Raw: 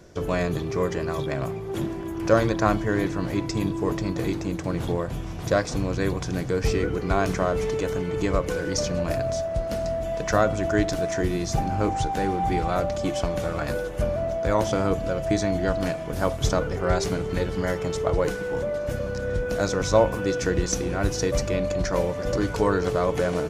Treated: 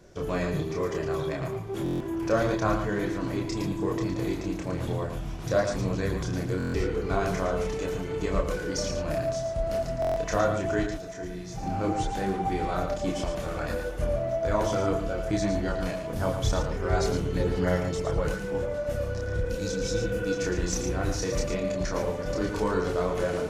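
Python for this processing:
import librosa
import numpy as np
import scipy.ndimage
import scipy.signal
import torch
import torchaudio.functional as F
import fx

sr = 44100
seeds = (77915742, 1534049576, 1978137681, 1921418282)

p1 = fx.spec_repair(x, sr, seeds[0], start_s=19.45, length_s=0.85, low_hz=350.0, high_hz=2200.0, source='both')
p2 = 10.0 ** (-18.5 / 20.0) * np.tanh(p1 / 10.0 ** (-18.5 / 20.0))
p3 = p1 + (p2 * 10.0 ** (-8.0 / 20.0))
p4 = fx.comb_fb(p3, sr, f0_hz=59.0, decay_s=1.5, harmonics='all', damping=0.0, mix_pct=70, at=(10.84, 11.63))
p5 = fx.chorus_voices(p4, sr, voices=4, hz=0.64, base_ms=29, depth_ms=4.4, mix_pct=45)
p6 = p5 + fx.echo_single(p5, sr, ms=112, db=-7.5, dry=0)
p7 = fx.buffer_glitch(p6, sr, at_s=(1.84, 6.58, 10.0), block=1024, repeats=6)
y = p7 * 10.0 ** (-3.5 / 20.0)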